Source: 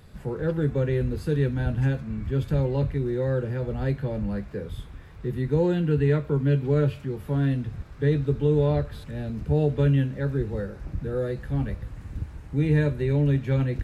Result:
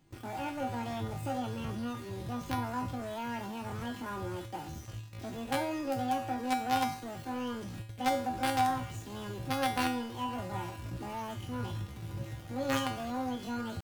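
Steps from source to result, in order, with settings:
in parallel at −3 dB: log-companded quantiser 2 bits
on the sum: pitch shifter +10 semitones
tuned comb filter 110 Hz, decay 0.5 s, harmonics odd, mix 90%
dynamic equaliser 1,400 Hz, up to +6 dB, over −53 dBFS, Q 2.3

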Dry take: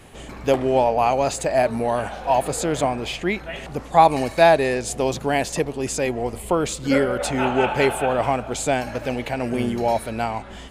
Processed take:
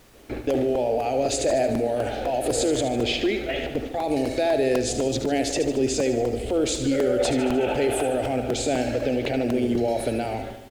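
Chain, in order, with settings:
noise gate with hold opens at −24 dBFS
low-pass that shuts in the quiet parts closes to 2,500 Hz, open at −16 dBFS
graphic EQ with 10 bands 125 Hz +7 dB, 250 Hz +9 dB, 500 Hz +3 dB, 1,000 Hz +5 dB, 4,000 Hz +3 dB
in parallel at −2 dB: downward compressor, threshold −26 dBFS, peak gain reduction 21 dB
on the sum: brickwall limiter −12 dBFS, peak gain reduction 15 dB
phaser with its sweep stopped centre 430 Hz, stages 4
background noise pink −54 dBFS
pitch vibrato 2 Hz 12 cents
on a send: repeating echo 75 ms, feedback 59%, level −9.5 dB
on the sum: regular buffer underruns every 0.25 s, samples 128, repeat, from 0:00.50

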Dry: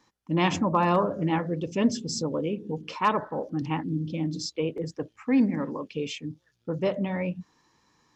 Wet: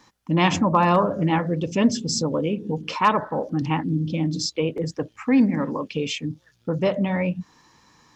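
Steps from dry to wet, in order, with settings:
parametric band 380 Hz −3.5 dB 0.74 octaves
in parallel at 0 dB: downward compressor, threshold −37 dBFS, peak gain reduction 17.5 dB
on the sum: level +4 dB

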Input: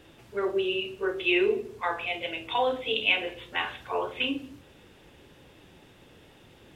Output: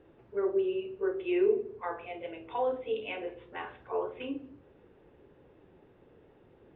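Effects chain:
low-pass filter 1,500 Hz 12 dB per octave
parametric band 420 Hz +7 dB 0.74 octaves
level −7 dB

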